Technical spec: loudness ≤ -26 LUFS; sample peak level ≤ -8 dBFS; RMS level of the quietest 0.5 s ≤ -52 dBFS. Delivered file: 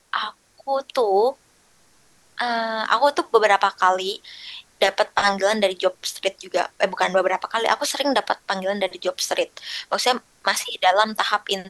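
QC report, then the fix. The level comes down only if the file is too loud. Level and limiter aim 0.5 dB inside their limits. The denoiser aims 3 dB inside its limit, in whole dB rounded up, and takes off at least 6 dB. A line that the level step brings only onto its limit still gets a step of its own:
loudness -21.5 LUFS: fail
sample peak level -3.5 dBFS: fail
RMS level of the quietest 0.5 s -58 dBFS: OK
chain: gain -5 dB

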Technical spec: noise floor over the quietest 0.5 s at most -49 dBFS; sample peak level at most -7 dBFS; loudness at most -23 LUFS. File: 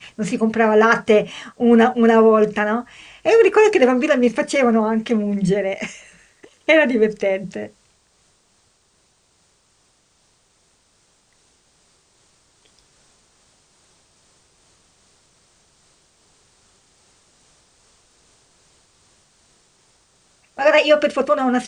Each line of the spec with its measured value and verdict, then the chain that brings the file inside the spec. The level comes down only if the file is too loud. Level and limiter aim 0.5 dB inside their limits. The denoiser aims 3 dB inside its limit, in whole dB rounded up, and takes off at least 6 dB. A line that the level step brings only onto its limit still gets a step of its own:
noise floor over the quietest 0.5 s -61 dBFS: OK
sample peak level -3.0 dBFS: fail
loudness -16.5 LUFS: fail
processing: gain -7 dB

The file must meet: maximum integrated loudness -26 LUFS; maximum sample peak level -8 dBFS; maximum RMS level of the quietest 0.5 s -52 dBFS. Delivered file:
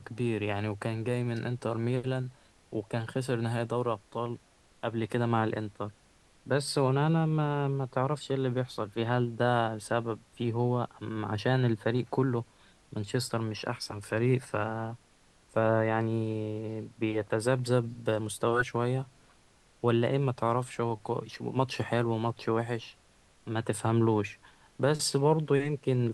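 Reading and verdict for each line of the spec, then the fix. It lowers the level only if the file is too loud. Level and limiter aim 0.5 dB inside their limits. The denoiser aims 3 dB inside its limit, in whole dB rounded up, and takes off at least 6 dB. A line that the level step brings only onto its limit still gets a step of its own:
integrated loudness -30.5 LUFS: OK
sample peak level -12.5 dBFS: OK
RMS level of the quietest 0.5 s -62 dBFS: OK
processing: none

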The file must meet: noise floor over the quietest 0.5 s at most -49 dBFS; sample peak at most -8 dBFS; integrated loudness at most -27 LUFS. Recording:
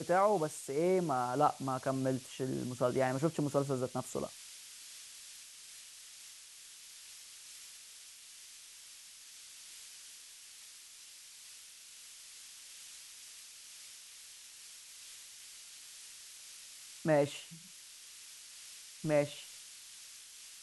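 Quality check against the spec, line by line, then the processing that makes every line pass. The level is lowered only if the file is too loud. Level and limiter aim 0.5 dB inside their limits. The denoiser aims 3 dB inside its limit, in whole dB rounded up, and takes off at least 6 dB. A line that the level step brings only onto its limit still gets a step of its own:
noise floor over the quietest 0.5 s -54 dBFS: OK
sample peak -15.5 dBFS: OK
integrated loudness -36.5 LUFS: OK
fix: none

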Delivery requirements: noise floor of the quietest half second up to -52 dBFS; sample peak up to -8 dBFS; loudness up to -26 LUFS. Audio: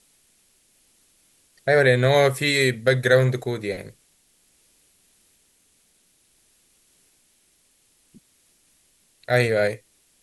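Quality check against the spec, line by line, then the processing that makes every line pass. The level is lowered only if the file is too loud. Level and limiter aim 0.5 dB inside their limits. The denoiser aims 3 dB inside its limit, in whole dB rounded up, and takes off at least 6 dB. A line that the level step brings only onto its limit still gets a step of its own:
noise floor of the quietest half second -63 dBFS: OK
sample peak -4.5 dBFS: fail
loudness -20.5 LUFS: fail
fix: gain -6 dB

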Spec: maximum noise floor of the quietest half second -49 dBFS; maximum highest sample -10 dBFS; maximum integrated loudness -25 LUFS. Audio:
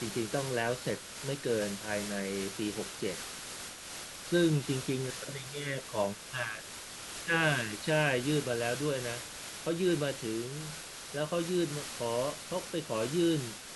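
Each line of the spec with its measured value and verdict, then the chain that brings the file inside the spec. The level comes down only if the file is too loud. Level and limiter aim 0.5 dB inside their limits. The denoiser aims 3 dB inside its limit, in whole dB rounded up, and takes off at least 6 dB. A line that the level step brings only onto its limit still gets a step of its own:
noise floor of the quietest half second -45 dBFS: fail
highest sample -15.5 dBFS: OK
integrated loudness -33.5 LUFS: OK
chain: denoiser 7 dB, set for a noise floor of -45 dBFS

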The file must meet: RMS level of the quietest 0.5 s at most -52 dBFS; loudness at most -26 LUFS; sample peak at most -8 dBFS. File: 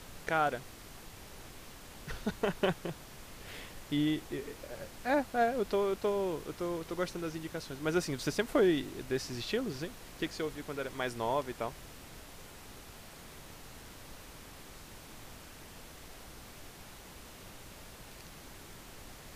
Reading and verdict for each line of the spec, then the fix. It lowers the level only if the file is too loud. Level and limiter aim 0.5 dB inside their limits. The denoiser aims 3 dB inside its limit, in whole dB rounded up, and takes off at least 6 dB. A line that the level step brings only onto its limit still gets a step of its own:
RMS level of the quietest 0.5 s -50 dBFS: fail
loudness -34.5 LUFS: OK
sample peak -17.0 dBFS: OK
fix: denoiser 6 dB, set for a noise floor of -50 dBFS

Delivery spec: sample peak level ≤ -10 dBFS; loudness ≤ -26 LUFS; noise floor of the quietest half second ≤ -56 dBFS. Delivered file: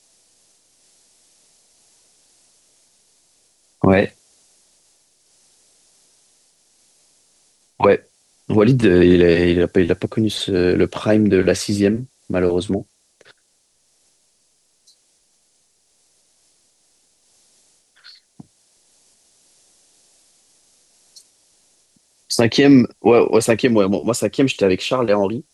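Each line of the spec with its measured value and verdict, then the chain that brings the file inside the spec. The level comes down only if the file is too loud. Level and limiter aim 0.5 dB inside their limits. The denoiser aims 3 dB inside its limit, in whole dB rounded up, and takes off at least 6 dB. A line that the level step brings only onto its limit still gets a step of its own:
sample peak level -3.0 dBFS: fail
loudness -16.5 LUFS: fail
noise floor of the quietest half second -63 dBFS: OK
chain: gain -10 dB

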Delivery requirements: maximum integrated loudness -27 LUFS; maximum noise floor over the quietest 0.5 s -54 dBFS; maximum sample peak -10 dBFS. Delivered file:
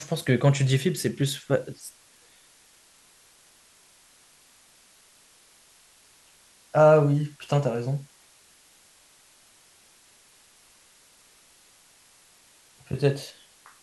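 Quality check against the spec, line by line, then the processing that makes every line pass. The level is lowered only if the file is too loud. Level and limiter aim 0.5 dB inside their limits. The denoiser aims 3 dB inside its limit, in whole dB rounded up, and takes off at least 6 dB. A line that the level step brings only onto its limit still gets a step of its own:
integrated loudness -24.0 LUFS: fail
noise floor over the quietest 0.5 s -58 dBFS: OK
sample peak -6.5 dBFS: fail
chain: gain -3.5 dB; limiter -10.5 dBFS

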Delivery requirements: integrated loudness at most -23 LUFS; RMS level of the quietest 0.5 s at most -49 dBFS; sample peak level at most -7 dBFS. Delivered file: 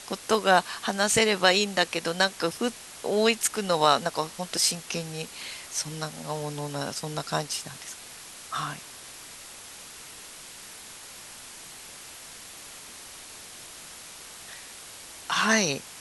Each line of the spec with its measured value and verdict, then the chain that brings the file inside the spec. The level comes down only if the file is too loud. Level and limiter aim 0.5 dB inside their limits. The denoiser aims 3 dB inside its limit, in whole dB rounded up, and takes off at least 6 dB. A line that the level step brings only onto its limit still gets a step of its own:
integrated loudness -26.0 LUFS: OK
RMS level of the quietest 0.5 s -45 dBFS: fail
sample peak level -5.5 dBFS: fail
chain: denoiser 7 dB, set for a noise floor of -45 dBFS; limiter -7.5 dBFS

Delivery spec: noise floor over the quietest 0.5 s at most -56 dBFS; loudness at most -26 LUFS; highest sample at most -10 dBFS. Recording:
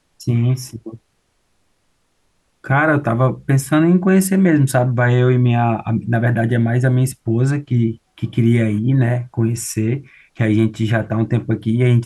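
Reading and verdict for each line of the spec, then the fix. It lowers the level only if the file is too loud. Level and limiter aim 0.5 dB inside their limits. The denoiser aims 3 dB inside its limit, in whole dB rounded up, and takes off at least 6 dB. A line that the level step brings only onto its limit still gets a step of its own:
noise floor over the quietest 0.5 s -64 dBFS: OK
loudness -17.0 LUFS: fail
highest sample -4.5 dBFS: fail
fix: gain -9.5 dB

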